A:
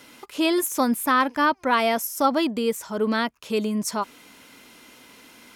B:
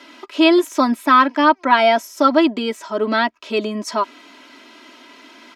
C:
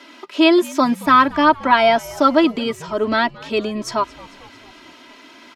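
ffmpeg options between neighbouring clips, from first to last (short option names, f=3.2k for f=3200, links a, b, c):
-filter_complex "[0:a]acrossover=split=200 5500:gain=0.0891 1 0.0891[a][b][c];[a][b][c]amix=inputs=3:normalize=0,aecho=1:1:3.1:0.76,volume=5dB"
-filter_complex "[0:a]asplit=6[a][b][c][d][e][f];[b]adelay=224,afreqshift=-78,volume=-21.5dB[g];[c]adelay=448,afreqshift=-156,volume=-25.8dB[h];[d]adelay=672,afreqshift=-234,volume=-30.1dB[i];[e]adelay=896,afreqshift=-312,volume=-34.4dB[j];[f]adelay=1120,afreqshift=-390,volume=-38.7dB[k];[a][g][h][i][j][k]amix=inputs=6:normalize=0"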